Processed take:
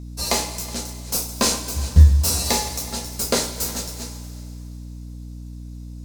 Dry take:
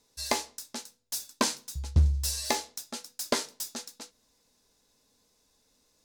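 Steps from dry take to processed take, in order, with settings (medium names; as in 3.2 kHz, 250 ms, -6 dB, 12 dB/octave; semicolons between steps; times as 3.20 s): backward echo that repeats 185 ms, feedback 41%, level -14 dB; treble shelf 4.2 kHz +7 dB; in parallel at -9.5 dB: sample-rate reducer 1.8 kHz; on the sum: two-slope reverb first 0.23 s, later 2.5 s, from -18 dB, DRR -1.5 dB; hum 60 Hz, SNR 13 dB; trim +1 dB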